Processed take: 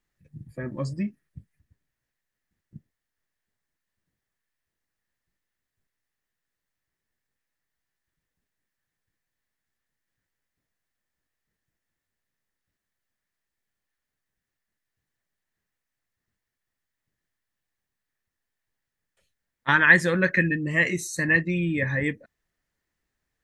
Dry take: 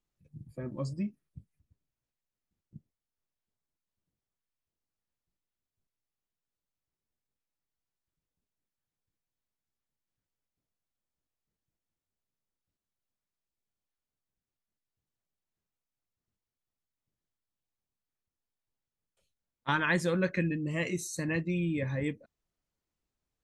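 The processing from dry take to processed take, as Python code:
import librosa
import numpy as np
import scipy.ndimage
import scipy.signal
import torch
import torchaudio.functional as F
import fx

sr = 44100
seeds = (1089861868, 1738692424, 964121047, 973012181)

y = fx.peak_eq(x, sr, hz=1800.0, db=13.0, octaves=0.44)
y = y * librosa.db_to_amplitude(5.0)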